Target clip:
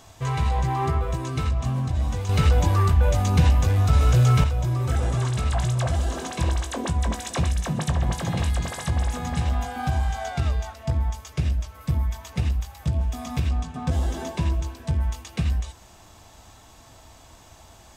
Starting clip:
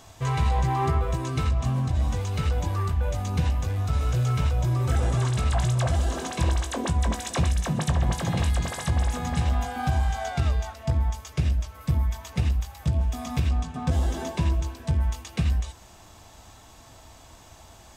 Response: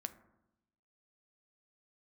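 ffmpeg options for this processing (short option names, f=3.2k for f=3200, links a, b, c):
-filter_complex "[0:a]asettb=1/sr,asplit=3[a][b][c];[a]atrim=end=2.294[d];[b]atrim=start=2.29:end=4.44,asetpts=PTS-STARTPTS,afade=t=in:d=0.004:c=qsin,afade=t=out:st=2.146:d=0.004:c=qsin,acontrast=87[e];[c]atrim=start=4.436[f];[d][e]acrossfade=d=0.004:c1=hsin:c2=qsin[g];[g][f]acrossfade=d=0.004:c1=qsin:c2=hsin"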